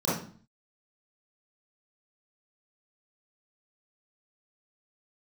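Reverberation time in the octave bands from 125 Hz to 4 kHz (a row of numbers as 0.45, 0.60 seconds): 0.60, 0.60, 0.45, 0.45, 0.40, 0.40 seconds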